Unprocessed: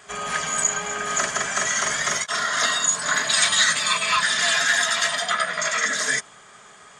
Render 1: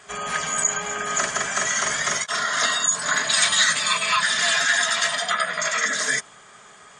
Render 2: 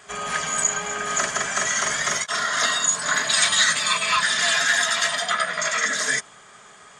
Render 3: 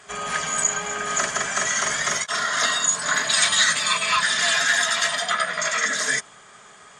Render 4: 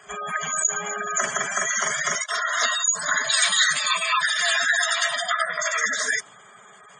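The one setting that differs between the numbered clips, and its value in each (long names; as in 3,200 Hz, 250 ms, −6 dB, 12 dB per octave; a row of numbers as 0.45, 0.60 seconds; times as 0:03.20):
gate on every frequency bin, under each frame's peak: −30, −55, −45, −15 decibels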